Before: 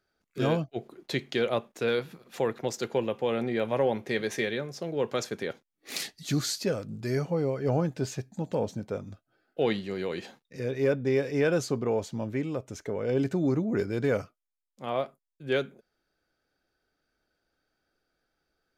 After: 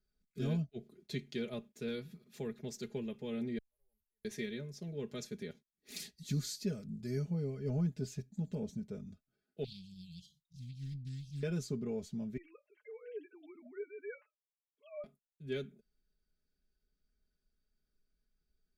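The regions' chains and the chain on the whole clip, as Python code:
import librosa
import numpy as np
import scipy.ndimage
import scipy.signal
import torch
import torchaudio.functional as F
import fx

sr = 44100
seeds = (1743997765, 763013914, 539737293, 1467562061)

y = fx.chain(x, sr, fx.cheby2_bandstop(low_hz=110.0, high_hz=6700.0, order=4, stop_db=40),
    fx.low_shelf(hz=160.0, db=-8.0),
    fx.auto_swell(attack_ms=461.0), at=(3.58, 4.25))
y = fx.chain(y, sr, fx.brickwall_bandstop(low_hz=180.0, high_hz=2800.0),
    fx.doppler_dist(depth_ms=0.67), at=(9.64, 11.43))
y = fx.chain(y, sr, fx.sine_speech(),
    fx.highpass(hz=640.0, slope=12),
    fx.comb(ms=6.7, depth=0.48), at=(12.37, 15.04))
y = fx.tone_stack(y, sr, knobs='10-0-1')
y = fx.notch(y, sr, hz=2900.0, q=28.0)
y = y + 0.81 * np.pad(y, (int(4.8 * sr / 1000.0), 0))[:len(y)]
y = y * librosa.db_to_amplitude(8.5)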